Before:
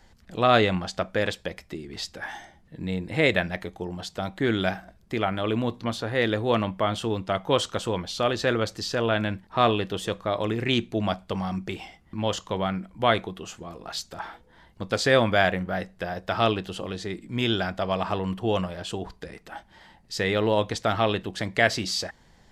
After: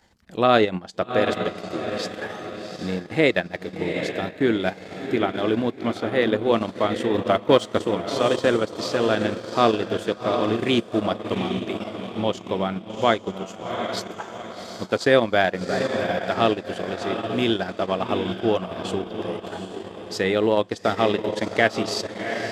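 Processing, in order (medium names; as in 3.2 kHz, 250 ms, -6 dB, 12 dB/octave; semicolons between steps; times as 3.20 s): dynamic bell 320 Hz, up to +6 dB, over -38 dBFS, Q 0.86; 7.14–7.79 s: waveshaping leveller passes 1; on a send: echo that smears into a reverb 763 ms, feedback 46%, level -6 dB; on the sum: transient shaper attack +1 dB, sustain -12 dB; high-pass 140 Hz 6 dB/octave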